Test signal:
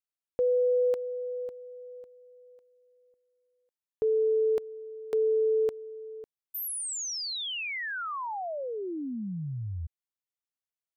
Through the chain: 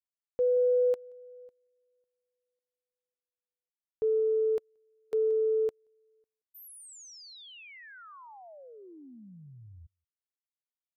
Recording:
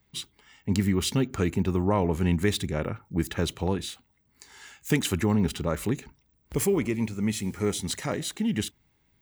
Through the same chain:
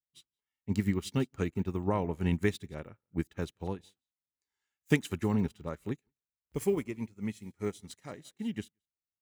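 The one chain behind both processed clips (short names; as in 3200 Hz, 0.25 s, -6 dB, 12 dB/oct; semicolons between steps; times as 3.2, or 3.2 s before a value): echo 0.177 s -21 dB; upward expander 2.5:1, over -45 dBFS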